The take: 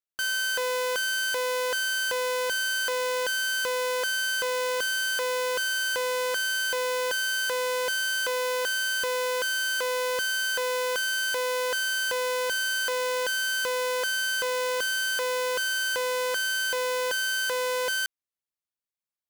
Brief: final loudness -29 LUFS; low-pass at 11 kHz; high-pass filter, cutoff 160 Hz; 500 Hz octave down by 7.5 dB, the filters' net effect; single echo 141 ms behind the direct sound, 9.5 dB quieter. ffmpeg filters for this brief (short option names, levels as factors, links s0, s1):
-af "highpass=160,lowpass=11000,equalizer=f=500:t=o:g=-7.5,aecho=1:1:141:0.335,volume=0.794"